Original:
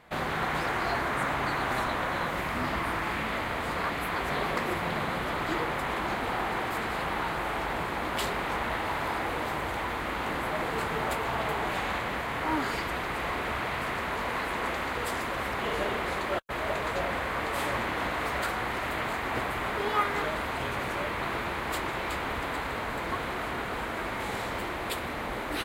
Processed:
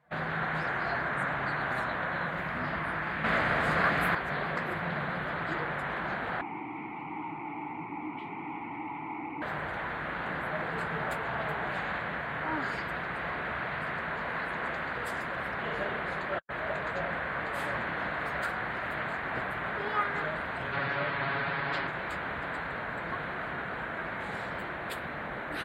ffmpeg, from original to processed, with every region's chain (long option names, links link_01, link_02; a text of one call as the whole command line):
ffmpeg -i in.wav -filter_complex "[0:a]asettb=1/sr,asplit=3[link_01][link_02][link_03];[link_01]atrim=end=3.244[link_04];[link_02]atrim=start=3.24:end=4.15,asetpts=PTS-STARTPTS,afade=type=in:duration=0.004:curve=qsin,afade=type=out:start_time=0.906:duration=0.004:curve=qsin,highshelf=frequency=10000:gain=-2,bandreject=frequency=930:width=19,acontrast=86[link_05];[link_03]atrim=start=4.146[link_06];[link_04][link_05]acrossfade=duration=0.004:curve1=hsin:curve2=qsin[link_07];[link_07][link_06]acrossfade=duration=0.004:curve1=qsin:curve2=hsin,asettb=1/sr,asplit=3[link_08][link_09][link_10];[link_08]atrim=end=6.414[link_11];[link_09]atrim=start=6.41:end=9.42,asetpts=PTS-STARTPTS,afade=type=in:duration=0.004:curve=qsin,afade=type=out:start_time=3.006:duration=0.004:curve=qsin,equalizer=frequency=110:width_type=o:width=0.73:gain=9.5,aeval=exprs='0.15*sin(PI/2*2.51*val(0)/0.15)':channel_layout=same,asplit=3[link_12][link_13][link_14];[link_12]bandpass=frequency=300:width_type=q:width=8,volume=0dB[link_15];[link_13]bandpass=frequency=870:width_type=q:width=8,volume=-6dB[link_16];[link_14]bandpass=frequency=2240:width_type=q:width=8,volume=-9dB[link_17];[link_15][link_16][link_17]amix=inputs=3:normalize=0[link_18];[link_10]atrim=start=9.416[link_19];[link_11][link_18]acrossfade=duration=0.004:curve1=hsin:curve2=qsin[link_20];[link_20][link_19]acrossfade=duration=0.004:curve1=qsin:curve2=hsin,asettb=1/sr,asplit=3[link_21][link_22][link_23];[link_21]atrim=end=20.724[link_24];[link_22]atrim=start=20.72:end=21.87,asetpts=PTS-STARTPTS,afade=type=in:duration=0.004:curve=qsin,afade=type=out:start_time=1.146:duration=0.004:curve=qsin,highshelf=frequency=6400:width_type=q:width=1.5:gain=-14,aecho=1:1:7.2:0.92,atrim=end_sample=50715[link_25];[link_23]atrim=start=21.866[link_26];[link_24][link_25]acrossfade=duration=0.004:curve1=hsin:curve2=qsin[link_27];[link_27][link_26]acrossfade=duration=0.004:curve1=qsin:curve2=hsin,highpass=47,afftdn=noise_reduction=14:noise_floor=-49,equalizer=frequency=160:width_type=o:width=0.67:gain=10,equalizer=frequency=630:width_type=o:width=0.67:gain=5,equalizer=frequency=1600:width_type=o:width=0.67:gain=10,volume=-8dB" out.wav